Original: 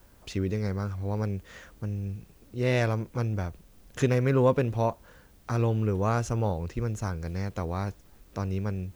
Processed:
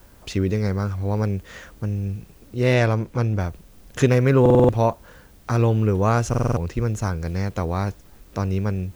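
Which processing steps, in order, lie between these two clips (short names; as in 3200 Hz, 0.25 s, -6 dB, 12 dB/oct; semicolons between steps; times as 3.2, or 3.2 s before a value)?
2.74–3.4 high shelf 8100 Hz -6.5 dB; stuck buffer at 4.41/6.29, samples 2048, times 5; gain +7 dB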